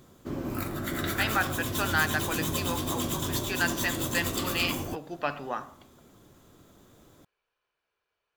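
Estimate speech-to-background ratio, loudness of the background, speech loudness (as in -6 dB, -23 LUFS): -0.5 dB, -31.0 LUFS, -31.5 LUFS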